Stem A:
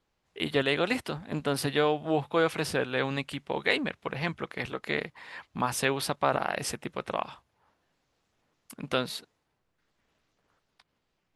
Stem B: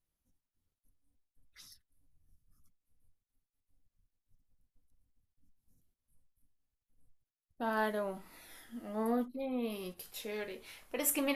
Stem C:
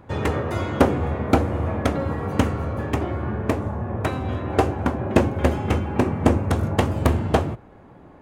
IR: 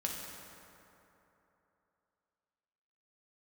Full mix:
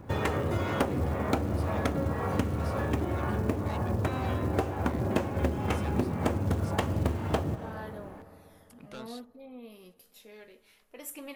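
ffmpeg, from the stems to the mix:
-filter_complex "[0:a]asoftclip=type=tanh:threshold=0.0473,volume=0.266[s0];[1:a]volume=0.282,asplit=2[s1][s2];[s2]volume=0.119[s3];[2:a]acrossover=split=500[s4][s5];[s4]aeval=exprs='val(0)*(1-0.5/2+0.5/2*cos(2*PI*2*n/s))':c=same[s6];[s5]aeval=exprs='val(0)*(1-0.5/2-0.5/2*cos(2*PI*2*n/s))':c=same[s7];[s6][s7]amix=inputs=2:normalize=0,acrusher=bits=7:mode=log:mix=0:aa=0.000001,volume=1.12,asplit=2[s8][s9];[s9]volume=0.178[s10];[3:a]atrim=start_sample=2205[s11];[s3][s10]amix=inputs=2:normalize=0[s12];[s12][s11]afir=irnorm=-1:irlink=0[s13];[s0][s1][s8][s13]amix=inputs=4:normalize=0,acompressor=threshold=0.0501:ratio=4"

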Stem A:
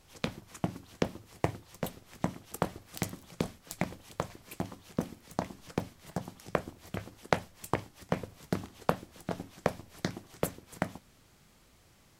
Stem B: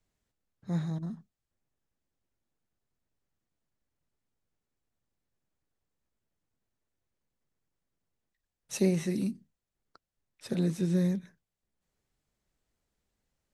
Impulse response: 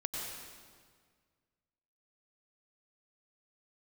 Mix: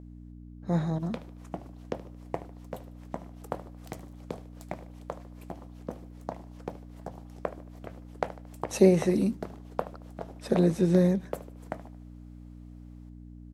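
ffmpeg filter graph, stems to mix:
-filter_complex "[0:a]adelay=900,volume=0.237,asplit=2[s0][s1];[s1]volume=0.15[s2];[1:a]aeval=exprs='val(0)+0.00447*(sin(2*PI*60*n/s)+sin(2*PI*2*60*n/s)/2+sin(2*PI*3*60*n/s)/3+sin(2*PI*4*60*n/s)/4+sin(2*PI*5*60*n/s)/5)':c=same,volume=1.06[s3];[s2]aecho=0:1:75|150|225|300|375|450:1|0.45|0.202|0.0911|0.041|0.0185[s4];[s0][s3][s4]amix=inputs=3:normalize=0,equalizer=f=610:w=0.54:g=11.5"

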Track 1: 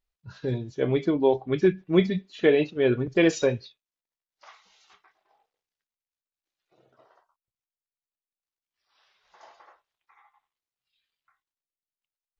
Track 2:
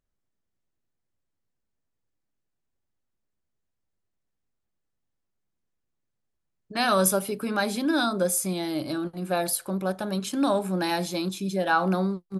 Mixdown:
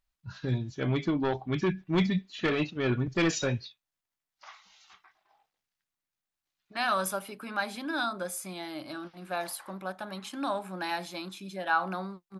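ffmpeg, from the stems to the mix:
-filter_complex "[0:a]asoftclip=type=tanh:threshold=0.15,volume=1.26[s0];[1:a]bass=f=250:g=-14,treble=f=4000:g=-10,volume=0.794[s1];[s0][s1]amix=inputs=2:normalize=0,equalizer=f=450:w=1.7:g=-11.5"

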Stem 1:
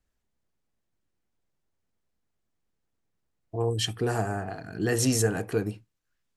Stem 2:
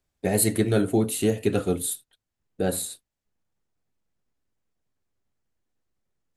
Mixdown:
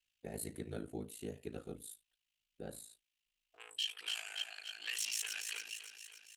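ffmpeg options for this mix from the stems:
-filter_complex "[0:a]asoftclip=type=tanh:threshold=0.0631,highpass=f=2800:t=q:w=4.7,volume=1.06,asplit=2[s0][s1];[s1]volume=0.266[s2];[1:a]volume=0.112[s3];[s2]aecho=0:1:284|568|852|1136|1420|1704|1988|2272:1|0.56|0.314|0.176|0.0983|0.0551|0.0308|0.0173[s4];[s0][s3][s4]amix=inputs=3:normalize=0,aeval=exprs='val(0)*sin(2*PI*27*n/s)':c=same,alimiter=level_in=1.41:limit=0.0631:level=0:latency=1:release=63,volume=0.708"

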